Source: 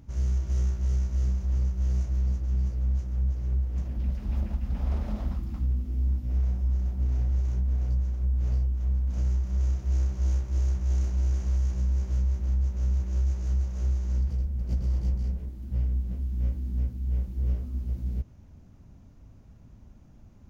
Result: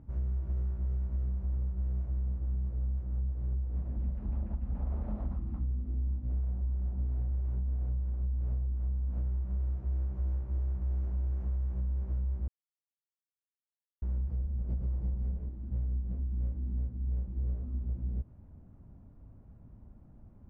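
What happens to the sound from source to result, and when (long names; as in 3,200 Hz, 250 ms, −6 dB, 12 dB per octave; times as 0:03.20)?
0:12.48–0:14.02: silence
whole clip: low-pass filter 1,200 Hz 12 dB per octave; downward compressor, threshold −27 dBFS; level −2 dB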